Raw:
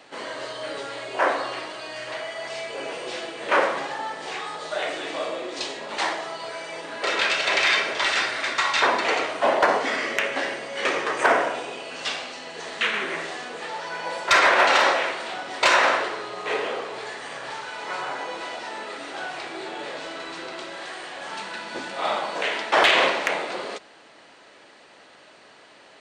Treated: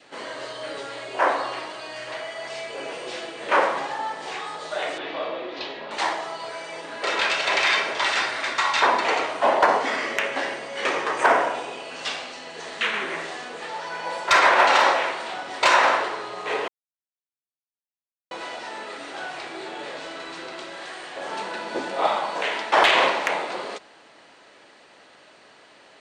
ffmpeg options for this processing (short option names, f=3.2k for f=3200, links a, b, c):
-filter_complex "[0:a]asettb=1/sr,asplit=3[a][b][c];[a]atrim=end=4.984[d];[b]atrim=start=4.98:end=5.91,asetpts=PTS-STARTPTS,afade=t=in:d=0.004:c=qsin,afade=t=out:st=0.926:d=0.004:c=qsin,lowpass=f=4.1k:w=0.5412,lowpass=f=4.1k:w=1.3066[e];[c]atrim=start=5.906[f];[d][e]acrossfade=d=0.004:c1=hsin:c2=qsin[g];[g][f]acrossfade=d=0.004:c1=qsin:c2=hsin,asettb=1/sr,asplit=3[h][i][j];[h]atrim=end=21.164[k];[i]atrim=start=21.16:end=22.07,asetpts=PTS-STARTPTS,afade=t=in:d=0.004:c=qsin,afade=t=out:st=0.906:d=0.004:c=qsin,equalizer=f=440:w=0.8:g=8.5[l];[j]atrim=start=22.066[m];[k][l]acrossfade=d=0.004:c1=hsin:c2=qsin[n];[n][m]acrossfade=d=0.004:c1=qsin:c2=hsin,asplit=3[o][p][q];[o]atrim=end=16.68,asetpts=PTS-STARTPTS,afade=t=out:st=16.676:d=0.004:c=hsin[r];[p]atrim=start=16.68:end=18.31,asetpts=PTS-STARTPTS,volume=0[s];[q]atrim=start=18.31,asetpts=PTS-STARTPTS,afade=t=in:d=0.004:c=hsin[t];[r][s][t]concat=n=3:v=0:a=1,adynamicequalizer=threshold=0.0224:dfrequency=920:dqfactor=2.2:tfrequency=920:tqfactor=2.2:attack=5:release=100:ratio=0.375:range=2.5:mode=boostabove:tftype=bell,volume=-1dB"